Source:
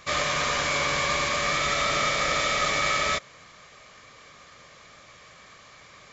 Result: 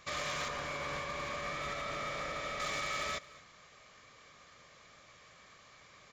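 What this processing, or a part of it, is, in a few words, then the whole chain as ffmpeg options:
limiter into clipper: -filter_complex "[0:a]alimiter=limit=0.126:level=0:latency=1:release=143,asoftclip=type=hard:threshold=0.0794,asettb=1/sr,asplit=3[s0][s1][s2];[s0]atrim=end=0.484[s3];[s1]atrim=start=0.48:end=2.6,asetpts=PTS-STARTPTS,afade=t=in:d=0.004:c=qsin,afade=t=out:st=2.116:d=0.004:c=qsin,highshelf=f=2900:g=-10[s4];[s2]atrim=start=2.596[s5];[s3][s4]acrossfade=d=0.004:c1=hsin:c2=qsin[s6];[s6][s5]acrossfade=d=0.004:c1=qsin:c2=hsin,aecho=1:1:221:0.0944,volume=0.376"

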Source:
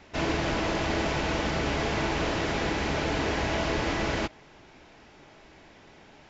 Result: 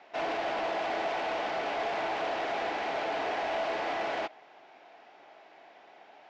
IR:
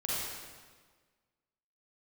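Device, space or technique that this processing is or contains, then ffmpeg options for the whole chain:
intercom: -af "highpass=460,lowpass=3600,equalizer=f=720:t=o:w=0.35:g=11,asoftclip=type=tanh:threshold=0.075,volume=0.75"

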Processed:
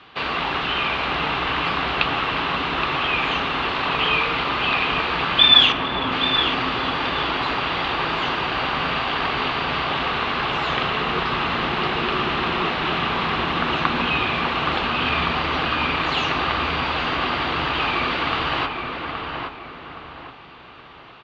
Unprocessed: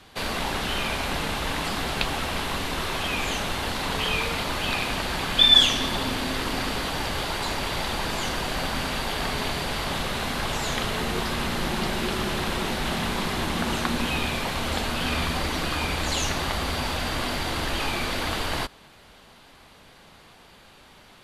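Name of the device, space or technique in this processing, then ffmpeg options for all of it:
frequency-shifting delay pedal into a guitar cabinet: -filter_complex "[0:a]asettb=1/sr,asplit=3[s0][s1][s2];[s0]atrim=end=5.724[s3];[s1]atrim=start=5.72:end=6.12,asetpts=PTS-STARTPTS,afade=t=in:d=0.004:c=qsin,afade=t=out:st=0.396:d=0.004:c=qsin,lowpass=f=1400:p=1[s4];[s2]atrim=start=6.116[s5];[s3][s4]acrossfade=d=0.004:c1=hsin:c2=qsin[s6];[s6][s5]acrossfade=d=0.004:c1=qsin:c2=hsin,asplit=2[s7][s8];[s8]adelay=821,lowpass=f=2100:p=1,volume=0.631,asplit=2[s9][s10];[s10]adelay=821,lowpass=f=2100:p=1,volume=0.38,asplit=2[s11][s12];[s12]adelay=821,lowpass=f=2100:p=1,volume=0.38,asplit=2[s13][s14];[s14]adelay=821,lowpass=f=2100:p=1,volume=0.38,asplit=2[s15][s16];[s16]adelay=821,lowpass=f=2100:p=1,volume=0.38[s17];[s7][s9][s11][s13][s15][s17]amix=inputs=6:normalize=0,asplit=7[s18][s19][s20][s21][s22][s23][s24];[s19]adelay=454,afreqshift=-38,volume=0.106[s25];[s20]adelay=908,afreqshift=-76,volume=0.0676[s26];[s21]adelay=1362,afreqshift=-114,volume=0.0432[s27];[s22]adelay=1816,afreqshift=-152,volume=0.0279[s28];[s23]adelay=2270,afreqshift=-190,volume=0.0178[s29];[s24]adelay=2724,afreqshift=-228,volume=0.0114[s30];[s18][s25][s26][s27][s28][s29][s30]amix=inputs=7:normalize=0,highpass=83,equalizer=f=94:t=q:w=4:g=-10,equalizer=f=210:t=q:w=4:g=-8,equalizer=f=570:t=q:w=4:g=-4,equalizer=f=1200:t=q:w=4:g=7,equalizer=f=2700:t=q:w=4:g=5,lowpass=f=3800:w=0.5412,lowpass=f=3800:w=1.3066,volume=1.5"

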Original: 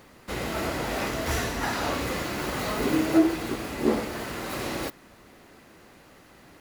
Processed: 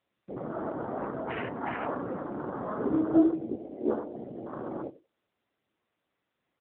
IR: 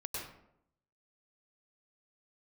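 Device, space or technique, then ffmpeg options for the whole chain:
mobile call with aggressive noise cancelling: -filter_complex "[0:a]asplit=3[s0][s1][s2];[s0]afade=t=out:st=3.57:d=0.02[s3];[s1]highpass=280,afade=t=in:st=3.57:d=0.02,afade=t=out:st=4.13:d=0.02[s4];[s2]afade=t=in:st=4.13:d=0.02[s5];[s3][s4][s5]amix=inputs=3:normalize=0,afwtdn=0.0355,highpass=140,aecho=1:1:94|188|282:0.133|0.0507|0.0193,afftdn=nr=15:nf=-44,volume=0.794" -ar 8000 -c:a libopencore_amrnb -b:a 7950

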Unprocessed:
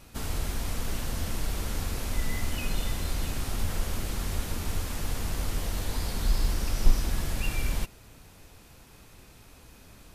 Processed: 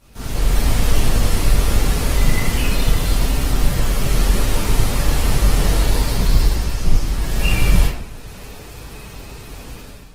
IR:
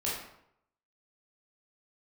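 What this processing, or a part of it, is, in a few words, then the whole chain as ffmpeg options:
speakerphone in a meeting room: -filter_complex "[1:a]atrim=start_sample=2205[s0];[0:a][s0]afir=irnorm=-1:irlink=0,dynaudnorm=f=100:g=7:m=3.98,volume=0.891" -ar 48000 -c:a libopus -b:a 16k

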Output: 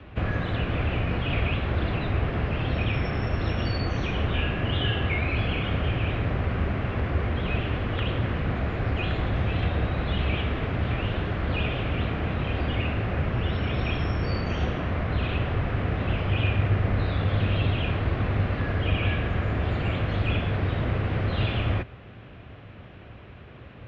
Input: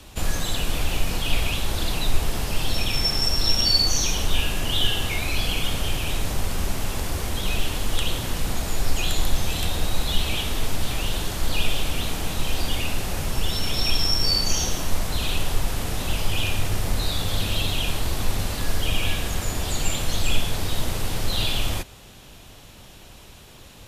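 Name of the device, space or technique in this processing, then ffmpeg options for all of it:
bass cabinet: -af "highpass=65,equalizer=f=71:t=q:w=4:g=4,equalizer=f=110:t=q:w=4:g=6,equalizer=f=890:t=q:w=4:g=-7,lowpass=f=2300:w=0.5412,lowpass=f=2300:w=1.3066,volume=1.41"

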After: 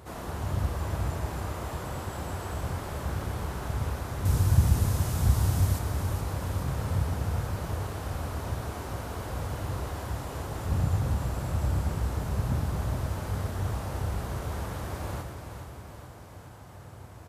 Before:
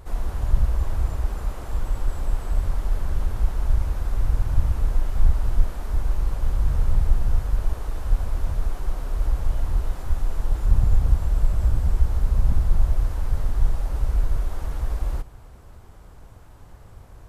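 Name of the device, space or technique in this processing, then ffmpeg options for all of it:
slapback doubling: -filter_complex "[0:a]highpass=f=85:w=0.5412,highpass=f=85:w=1.3066,asplit=3[s0][s1][s2];[s1]adelay=31,volume=0.355[s3];[s2]adelay=113,volume=0.398[s4];[s0][s3][s4]amix=inputs=3:normalize=0,asettb=1/sr,asplit=3[s5][s6][s7];[s5]atrim=end=4.254[s8];[s6]atrim=start=4.25:end=5.79,asetpts=PTS-STARTPTS,afade=t=in:d=0.004:c=qsin,afade=t=out:st=1.536:d=0.004:c=qsin,bass=f=250:g=7,treble=f=4000:g=11[s9];[s7]atrim=start=5.786[s10];[s8][s9]acrossfade=d=0.004:c1=hsin:c2=qsin[s11];[s11][s10]acrossfade=d=0.004:c1=qsin:c2=hsin,aecho=1:1:422|844|1266|1688|2110|2532|2954:0.398|0.235|0.139|0.0818|0.0482|0.0285|0.0168,volume=1.12"

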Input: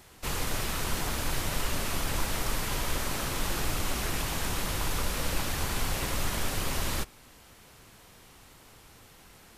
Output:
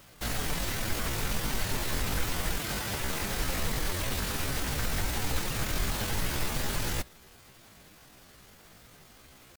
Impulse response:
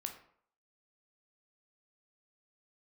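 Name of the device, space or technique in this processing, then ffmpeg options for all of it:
chipmunk voice: -filter_complex "[0:a]asetrate=68011,aresample=44100,atempo=0.64842,asettb=1/sr,asplit=3[s0][s1][s2];[s0]atrim=end=2.584[s3];[s1]atrim=start=2.58:end=3,asetpts=PTS-STARTPTS,afade=t=in:d=0.004:c=qsin,afade=t=out:st=0.416:d=0.004:c=qsin,highpass=62[s4];[s2]atrim=start=2.996[s5];[s3][s4]acrossfade=d=0.004:c1=hsin:c2=qsin[s6];[s6][s5]acrossfade=d=0.004:c1=qsin:c2=hsin"

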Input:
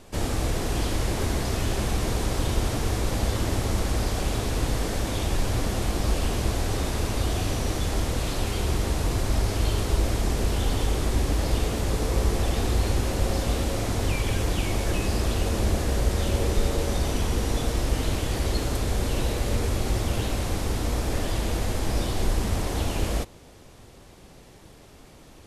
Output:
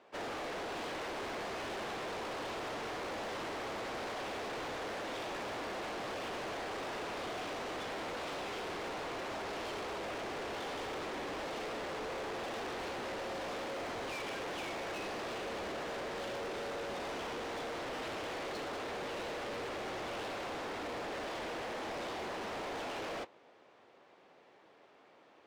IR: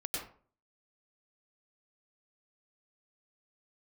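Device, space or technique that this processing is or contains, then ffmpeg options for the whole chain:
walkie-talkie: -af "highpass=470,lowpass=2400,asoftclip=type=hard:threshold=0.0106,agate=range=0.447:threshold=0.00562:ratio=16:detection=peak,volume=1.12"

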